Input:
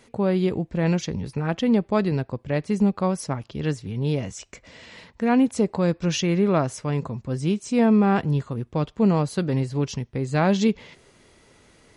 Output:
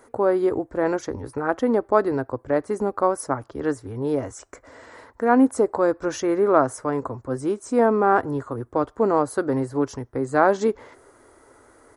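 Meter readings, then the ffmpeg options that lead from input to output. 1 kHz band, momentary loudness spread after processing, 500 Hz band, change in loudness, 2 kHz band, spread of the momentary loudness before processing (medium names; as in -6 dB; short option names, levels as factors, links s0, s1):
+6.5 dB, 10 LU, +4.5 dB, +0.5 dB, +2.5 dB, 8 LU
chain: -af "firequalizer=gain_entry='entry(120,0);entry(170,-16);entry(270,7);entry(1400,11);entry(2600,-11);entry(9200,7)':delay=0.05:min_phase=1,volume=0.708"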